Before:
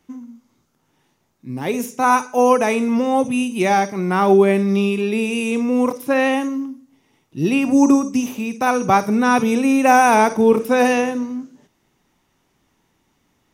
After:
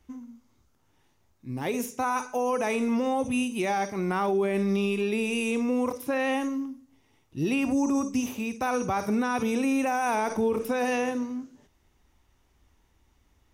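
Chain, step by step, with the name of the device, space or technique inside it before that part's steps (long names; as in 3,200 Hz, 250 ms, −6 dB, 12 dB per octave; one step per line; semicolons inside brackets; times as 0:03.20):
car stereo with a boomy subwoofer (low shelf with overshoot 100 Hz +13.5 dB, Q 1.5; brickwall limiter −13.5 dBFS, peak gain reduction 11.5 dB)
level −5 dB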